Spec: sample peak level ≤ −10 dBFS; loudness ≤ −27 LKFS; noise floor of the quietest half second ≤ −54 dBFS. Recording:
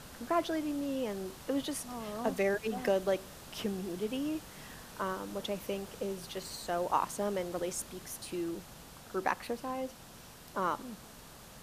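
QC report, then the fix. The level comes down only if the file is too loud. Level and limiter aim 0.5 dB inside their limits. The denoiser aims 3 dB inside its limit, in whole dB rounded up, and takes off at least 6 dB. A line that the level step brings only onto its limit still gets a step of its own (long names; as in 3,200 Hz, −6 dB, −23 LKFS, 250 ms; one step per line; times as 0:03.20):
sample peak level −15.0 dBFS: in spec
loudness −36.0 LKFS: in spec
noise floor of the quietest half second −52 dBFS: out of spec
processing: broadband denoise 6 dB, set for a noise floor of −52 dBFS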